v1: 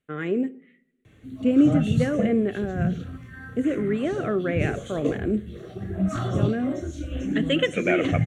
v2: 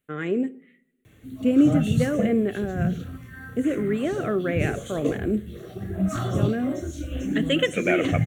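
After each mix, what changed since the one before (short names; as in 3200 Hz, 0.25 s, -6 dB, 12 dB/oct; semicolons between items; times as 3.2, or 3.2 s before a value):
master: remove air absorption 52 m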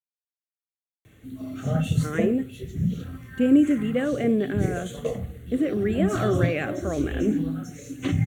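speech: entry +1.95 s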